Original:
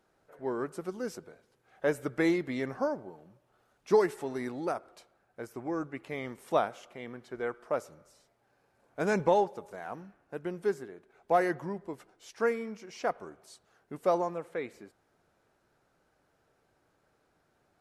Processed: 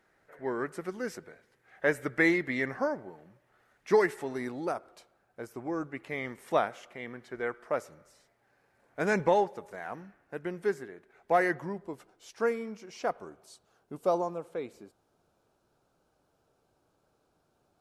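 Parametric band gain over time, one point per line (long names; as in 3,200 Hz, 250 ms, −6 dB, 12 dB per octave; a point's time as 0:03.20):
parametric band 1,900 Hz 0.59 octaves
0:03.93 +11.5 dB
0:04.54 0 dB
0:05.73 0 dB
0:06.20 +7 dB
0:11.49 +7 dB
0:11.91 −2.5 dB
0:13.13 −2.5 dB
0:14.04 −11 dB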